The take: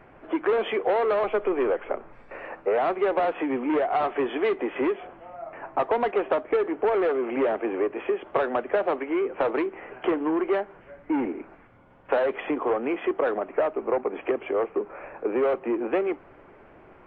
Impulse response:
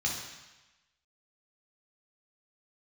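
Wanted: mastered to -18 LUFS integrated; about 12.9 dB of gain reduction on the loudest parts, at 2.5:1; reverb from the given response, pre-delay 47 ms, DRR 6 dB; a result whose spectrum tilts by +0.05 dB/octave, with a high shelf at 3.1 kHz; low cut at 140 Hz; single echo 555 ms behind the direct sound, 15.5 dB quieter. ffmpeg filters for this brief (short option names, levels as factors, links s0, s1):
-filter_complex "[0:a]highpass=140,highshelf=f=3100:g=-5.5,acompressor=threshold=0.01:ratio=2.5,aecho=1:1:555:0.168,asplit=2[s0][s1];[1:a]atrim=start_sample=2205,adelay=47[s2];[s1][s2]afir=irnorm=-1:irlink=0,volume=0.237[s3];[s0][s3]amix=inputs=2:normalize=0,volume=10"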